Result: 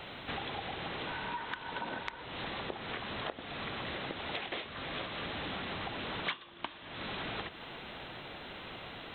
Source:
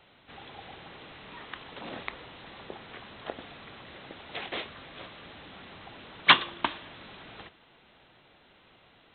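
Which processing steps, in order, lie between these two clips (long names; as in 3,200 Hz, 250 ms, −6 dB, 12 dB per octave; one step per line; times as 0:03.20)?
0:01.07–0:02.23: hollow resonant body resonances 940/1,500 Hz, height 14 dB
downward compressor 12 to 1, threshold −50 dBFS, peak gain reduction 37 dB
level +14 dB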